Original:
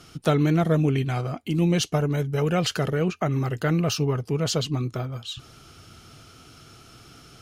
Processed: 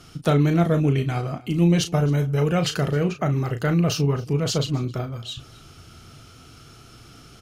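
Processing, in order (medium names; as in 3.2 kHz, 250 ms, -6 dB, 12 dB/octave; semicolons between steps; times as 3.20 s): bass shelf 130 Hz +5 dB; doubling 35 ms -8.5 dB; on a send: delay 266 ms -23 dB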